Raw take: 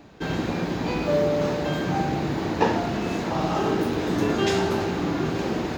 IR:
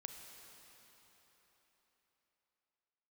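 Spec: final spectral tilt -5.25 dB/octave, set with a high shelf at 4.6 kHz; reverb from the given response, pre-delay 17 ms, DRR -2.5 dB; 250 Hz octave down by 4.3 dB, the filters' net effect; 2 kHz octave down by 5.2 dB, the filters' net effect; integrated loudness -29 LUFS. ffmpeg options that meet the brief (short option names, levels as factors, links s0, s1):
-filter_complex "[0:a]equalizer=f=250:t=o:g=-6,equalizer=f=2000:t=o:g=-8.5,highshelf=f=4600:g=7.5,asplit=2[s0][s1];[1:a]atrim=start_sample=2205,adelay=17[s2];[s1][s2]afir=irnorm=-1:irlink=0,volume=2.11[s3];[s0][s3]amix=inputs=2:normalize=0,volume=0.447"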